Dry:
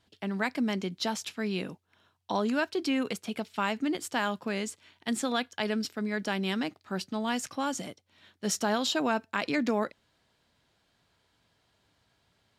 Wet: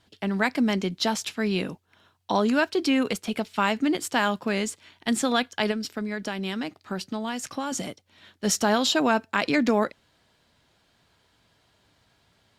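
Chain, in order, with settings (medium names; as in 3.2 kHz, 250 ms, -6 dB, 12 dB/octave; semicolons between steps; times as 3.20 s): 5.71–7.72 s: compression, threshold -33 dBFS, peak gain reduction 8 dB; trim +6 dB; Opus 64 kbps 48 kHz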